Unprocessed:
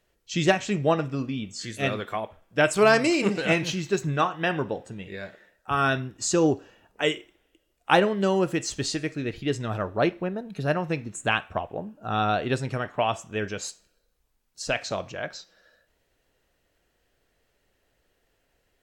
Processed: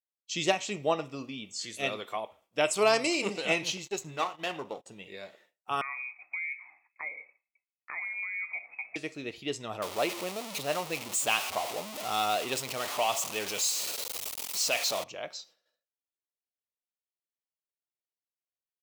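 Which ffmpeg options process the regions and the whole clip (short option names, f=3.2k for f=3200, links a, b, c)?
-filter_complex "[0:a]asettb=1/sr,asplit=3[a][b][c];[a]atrim=end=3.774[d];[b]atrim=start=3.77:end=4.86,asetpts=PTS-STARTPTS,afade=t=in:d=0.004:c=qsin,afade=t=out:st=1.086:d=0.004:c=qsin,aeval=exprs='if(lt(val(0),0),0.447*val(0),val(0))':c=same,agate=range=-23dB:threshold=-42dB:ratio=16:release=100:detection=peak,equalizer=f=7k:w=6.3:g=5[e];[c]atrim=start=4.856[f];[d][e]acrossfade=d=0.004:c1=hsin:c2=qsin[g];[g][f]acrossfade=d=0.004:c1=qsin:c2=hsin,asettb=1/sr,asplit=3[h][i][j];[h]atrim=end=5.814[k];[i]atrim=start=5.81:end=8.96,asetpts=PTS-STARTPTS,afade=t=in:d=0.004:c=qsin,afade=t=out:st=3.146:d=0.004:c=qsin,equalizer=f=460:t=o:w=1:g=6.5,acompressor=threshold=-30dB:ratio=6:attack=3.2:release=140:knee=1:detection=peak,lowpass=f=2.2k:t=q:w=0.5098,lowpass=f=2.2k:t=q:w=0.6013,lowpass=f=2.2k:t=q:w=0.9,lowpass=f=2.2k:t=q:w=2.563,afreqshift=-2600[l];[j]atrim=start=8.956[m];[k][l]acrossfade=d=0.004:c1=hsin:c2=qsin[n];[n][m]acrossfade=d=0.004:c1=qsin:c2=hsin,asettb=1/sr,asplit=3[o][p][q];[o]atrim=end=9.824[r];[p]atrim=start=9.82:end=15.04,asetpts=PTS-STARTPTS,afade=t=in:d=0.004:c=qsin,afade=t=out:st=5.216:d=0.004:c=qsin,aeval=exprs='val(0)+0.5*0.0531*sgn(val(0))':c=same,lowshelf=f=450:g=-6.5[s];[q]atrim=start=15.036[t];[r][s]acrossfade=d=0.004:c1=hsin:c2=qsin[u];[u][t]acrossfade=d=0.004:c1=qsin:c2=hsin,agate=range=-33dB:threshold=-50dB:ratio=3:detection=peak,highpass=f=820:p=1,equalizer=f=1.6k:t=o:w=0.5:g=-12.5"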